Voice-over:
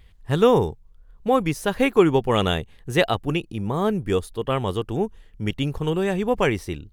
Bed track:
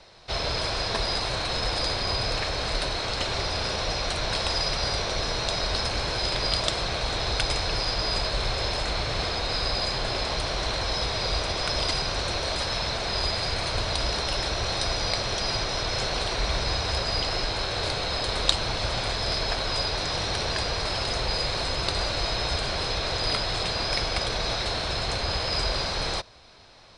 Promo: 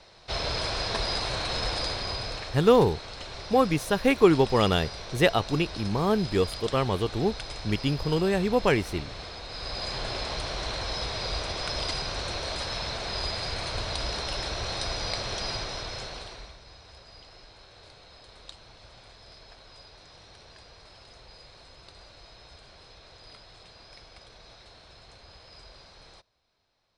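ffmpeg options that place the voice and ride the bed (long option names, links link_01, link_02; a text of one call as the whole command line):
ffmpeg -i stem1.wav -i stem2.wav -filter_complex "[0:a]adelay=2250,volume=-2dB[link_01];[1:a]volume=5.5dB,afade=type=out:start_time=1.64:duration=0.99:silence=0.316228,afade=type=in:start_time=9.5:duration=0.48:silence=0.421697,afade=type=out:start_time=15.45:duration=1.11:silence=0.112202[link_02];[link_01][link_02]amix=inputs=2:normalize=0" out.wav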